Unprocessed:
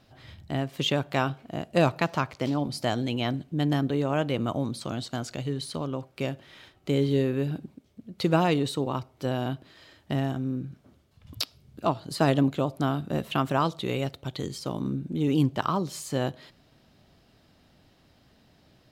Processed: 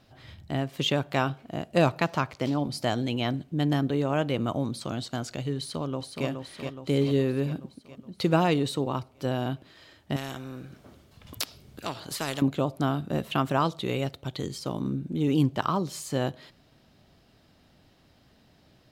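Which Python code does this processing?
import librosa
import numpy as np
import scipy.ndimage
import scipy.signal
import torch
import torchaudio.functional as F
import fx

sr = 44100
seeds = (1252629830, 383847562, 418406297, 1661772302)

y = fx.echo_throw(x, sr, start_s=5.58, length_s=0.69, ms=420, feedback_pct=60, wet_db=-5.5)
y = fx.spectral_comp(y, sr, ratio=2.0, at=(10.16, 12.42))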